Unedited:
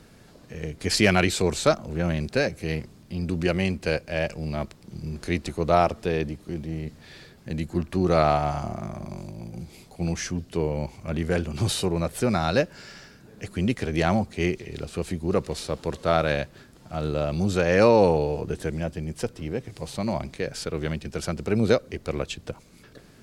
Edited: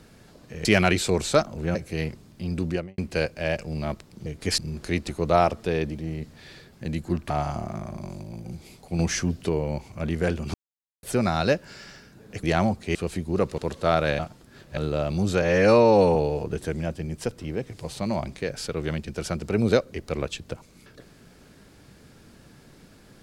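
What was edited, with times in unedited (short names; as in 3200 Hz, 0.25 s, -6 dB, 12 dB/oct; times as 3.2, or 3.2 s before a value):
0.65–0.97 move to 4.97
2.07–2.46 cut
3.33–3.69 studio fade out
6.34–6.6 cut
7.95–8.38 cut
10.07–10.57 gain +4 dB
11.62–12.11 mute
13.51–13.93 cut
14.45–14.9 cut
15.53–15.8 cut
16.41–16.99 reverse
17.64–18.13 stretch 1.5×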